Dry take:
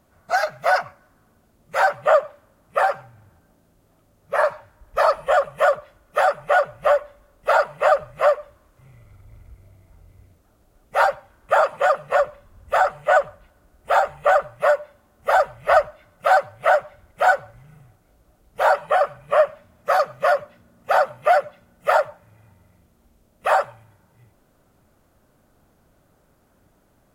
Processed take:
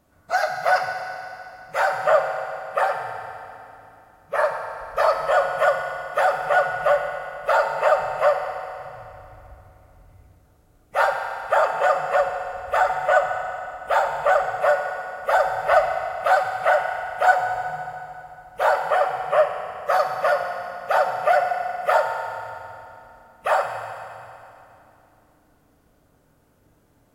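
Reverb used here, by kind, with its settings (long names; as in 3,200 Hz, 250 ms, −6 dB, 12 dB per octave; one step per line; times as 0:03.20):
feedback delay network reverb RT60 2.9 s, high-frequency decay 0.9×, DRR 2.5 dB
level −2.5 dB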